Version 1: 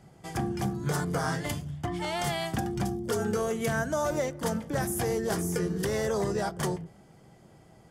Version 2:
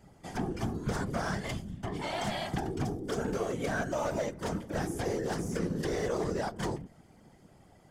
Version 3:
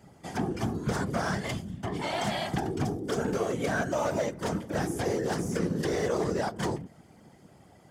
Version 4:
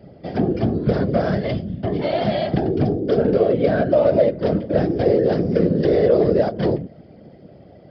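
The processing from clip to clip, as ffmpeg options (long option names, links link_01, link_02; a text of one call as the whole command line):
ffmpeg -i in.wav -filter_complex "[0:a]acrossover=split=7700[link_01][link_02];[link_02]acompressor=threshold=-56dB:ratio=4:attack=1:release=60[link_03];[link_01][link_03]amix=inputs=2:normalize=0,volume=24dB,asoftclip=hard,volume=-24dB,afftfilt=real='hypot(re,im)*cos(2*PI*random(0))':imag='hypot(re,im)*sin(2*PI*random(1))':win_size=512:overlap=0.75,volume=3dB" out.wav
ffmpeg -i in.wav -af "highpass=75,volume=3.5dB" out.wav
ffmpeg -i in.wav -af "lowshelf=frequency=740:width_type=q:width=3:gain=7,aresample=11025,aresample=44100,volume=3dB" out.wav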